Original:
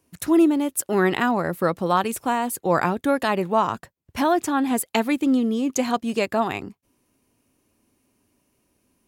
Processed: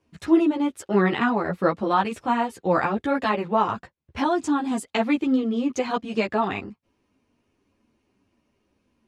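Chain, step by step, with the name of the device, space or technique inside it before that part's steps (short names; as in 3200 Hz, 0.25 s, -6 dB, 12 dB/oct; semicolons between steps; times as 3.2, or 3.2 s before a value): string-machine ensemble chorus (ensemble effect; LPF 4100 Hz 12 dB/oct); 4.24–4.85 graphic EQ 125/250/500/2000/8000 Hz -4/+6/-6/-8/+9 dB; gain +2.5 dB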